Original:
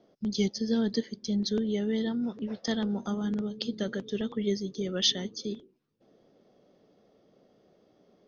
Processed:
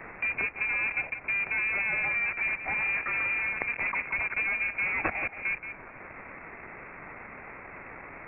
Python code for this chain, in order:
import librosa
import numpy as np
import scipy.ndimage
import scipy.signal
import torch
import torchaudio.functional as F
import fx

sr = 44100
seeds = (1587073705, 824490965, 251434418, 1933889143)

p1 = x + 0.5 * 10.0 ** (-28.5 / 20.0) * np.diff(np.sign(x), prepend=np.sign(x[:1]))
p2 = fx.low_shelf(p1, sr, hz=290.0, db=-11.5)
p3 = fx.rider(p2, sr, range_db=4, speed_s=0.5)
p4 = p2 + (p3 * librosa.db_to_amplitude(3.0))
p5 = fx.quant_companded(p4, sr, bits=2)
p6 = p5 + fx.echo_single(p5, sr, ms=176, db=-11.5, dry=0)
p7 = fx.freq_invert(p6, sr, carrier_hz=2600)
p8 = fx.band_squash(p7, sr, depth_pct=40)
y = p8 * librosa.db_to_amplitude(-3.0)